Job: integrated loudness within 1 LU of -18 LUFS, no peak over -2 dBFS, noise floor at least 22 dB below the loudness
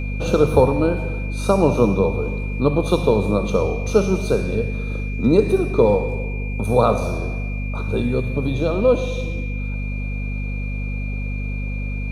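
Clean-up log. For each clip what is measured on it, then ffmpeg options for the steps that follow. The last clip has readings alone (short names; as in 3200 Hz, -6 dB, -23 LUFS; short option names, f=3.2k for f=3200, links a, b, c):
hum 50 Hz; harmonics up to 250 Hz; hum level -23 dBFS; steady tone 2400 Hz; tone level -34 dBFS; loudness -21.0 LUFS; peak -2.0 dBFS; loudness target -18.0 LUFS
-> -af "bandreject=f=50:t=h:w=6,bandreject=f=100:t=h:w=6,bandreject=f=150:t=h:w=6,bandreject=f=200:t=h:w=6,bandreject=f=250:t=h:w=6"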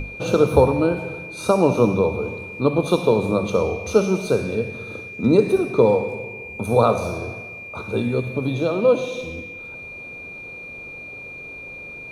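hum none; steady tone 2400 Hz; tone level -34 dBFS
-> -af "bandreject=f=2.4k:w=30"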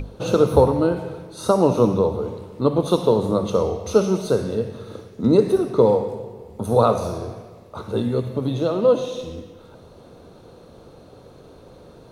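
steady tone none; loudness -20.5 LUFS; peak -1.5 dBFS; loudness target -18.0 LUFS
-> -af "volume=2.5dB,alimiter=limit=-2dB:level=0:latency=1"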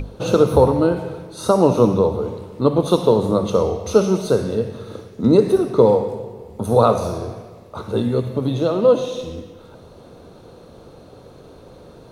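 loudness -18.0 LUFS; peak -2.0 dBFS; noise floor -44 dBFS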